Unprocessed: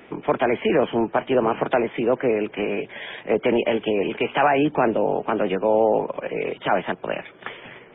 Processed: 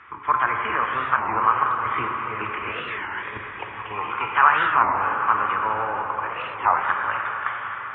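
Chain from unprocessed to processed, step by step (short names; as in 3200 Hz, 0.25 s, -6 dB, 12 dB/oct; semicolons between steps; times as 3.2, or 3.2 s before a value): HPF 74 Hz; 3.48–4.24 spectral gain 690–1500 Hz +11 dB; EQ curve 110 Hz 0 dB, 160 Hz -22 dB, 690 Hz -18 dB, 1100 Hz +11 dB, 2800 Hz -6 dB; 1.68–3.91 negative-ratio compressor -37 dBFS, ratio -0.5; air absorption 130 m; plate-style reverb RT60 4.9 s, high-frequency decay 0.8×, DRR 0.5 dB; record warp 33 1/3 rpm, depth 250 cents; gain +2 dB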